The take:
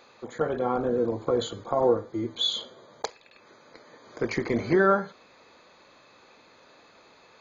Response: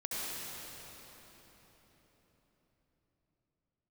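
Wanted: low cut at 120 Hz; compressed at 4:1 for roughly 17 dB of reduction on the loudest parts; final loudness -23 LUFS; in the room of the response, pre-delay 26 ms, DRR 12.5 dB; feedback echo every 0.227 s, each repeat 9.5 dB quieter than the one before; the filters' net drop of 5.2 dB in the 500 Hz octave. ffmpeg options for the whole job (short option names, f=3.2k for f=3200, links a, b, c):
-filter_complex "[0:a]highpass=120,equalizer=f=500:t=o:g=-6.5,acompressor=threshold=-41dB:ratio=4,aecho=1:1:227|454|681|908:0.335|0.111|0.0365|0.012,asplit=2[a][b];[1:a]atrim=start_sample=2205,adelay=26[c];[b][c]afir=irnorm=-1:irlink=0,volume=-17dB[d];[a][d]amix=inputs=2:normalize=0,volume=21dB"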